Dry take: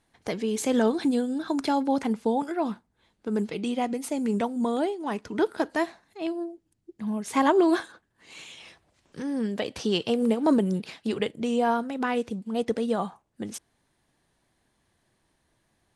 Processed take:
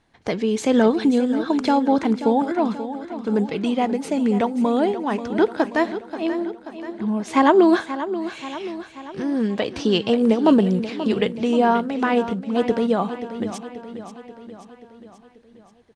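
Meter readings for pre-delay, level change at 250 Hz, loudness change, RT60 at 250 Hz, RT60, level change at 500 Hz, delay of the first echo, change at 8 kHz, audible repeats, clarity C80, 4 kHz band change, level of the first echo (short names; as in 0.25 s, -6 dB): none, +7.0 dB, +6.0 dB, none, none, +6.5 dB, 0.533 s, n/a, 5, none, +5.0 dB, -12.0 dB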